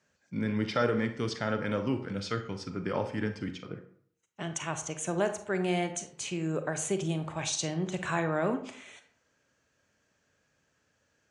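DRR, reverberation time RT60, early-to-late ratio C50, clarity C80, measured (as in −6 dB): 8.0 dB, 0.60 s, 10.5 dB, 13.0 dB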